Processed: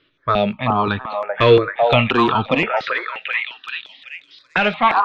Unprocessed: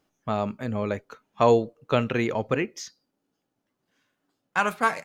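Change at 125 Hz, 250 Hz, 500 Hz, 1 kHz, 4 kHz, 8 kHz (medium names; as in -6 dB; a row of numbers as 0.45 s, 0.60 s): +8.0 dB, +7.0 dB, +7.5 dB, +10.5 dB, +15.0 dB, under -10 dB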